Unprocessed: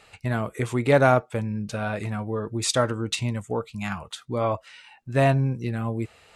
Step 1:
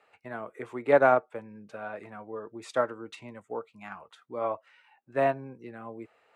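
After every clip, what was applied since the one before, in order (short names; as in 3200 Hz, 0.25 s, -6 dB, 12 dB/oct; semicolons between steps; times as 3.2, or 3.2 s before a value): HPF 87 Hz; three-band isolator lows -18 dB, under 280 Hz, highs -16 dB, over 2200 Hz; upward expander 1.5:1, over -30 dBFS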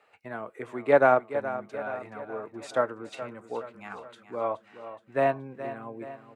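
feedback echo 0.423 s, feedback 53%, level -12.5 dB; gain +1 dB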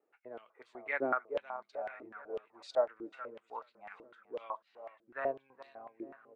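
stepped band-pass 8 Hz 330–4300 Hz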